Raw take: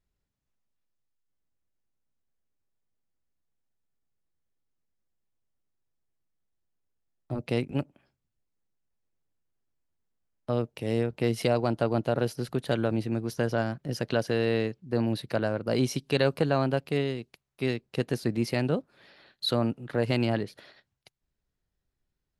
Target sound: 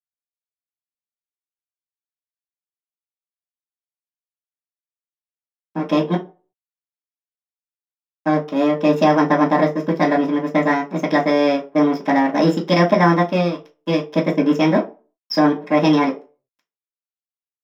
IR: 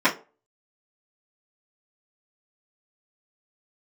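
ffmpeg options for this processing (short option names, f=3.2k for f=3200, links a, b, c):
-filter_complex "[0:a]aeval=exprs='sgn(val(0))*max(abs(val(0))-0.0133,0)':c=same,asetrate=56007,aresample=44100[a];[1:a]atrim=start_sample=2205,afade=t=out:st=0.43:d=0.01,atrim=end_sample=19404[b];[a][b]afir=irnorm=-1:irlink=0,volume=-6dB"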